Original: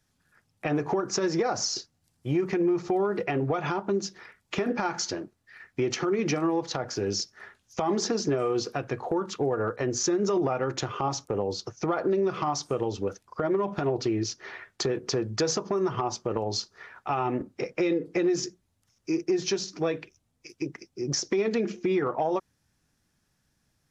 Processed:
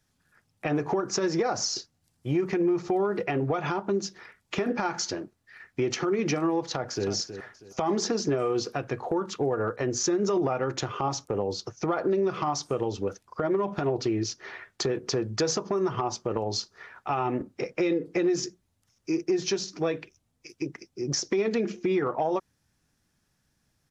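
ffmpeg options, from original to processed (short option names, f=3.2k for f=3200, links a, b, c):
-filter_complex "[0:a]asplit=2[a][b];[b]afade=t=in:st=6.67:d=0.01,afade=t=out:st=7.08:d=0.01,aecho=0:1:320|640|960:0.298538|0.0895615|0.0268684[c];[a][c]amix=inputs=2:normalize=0"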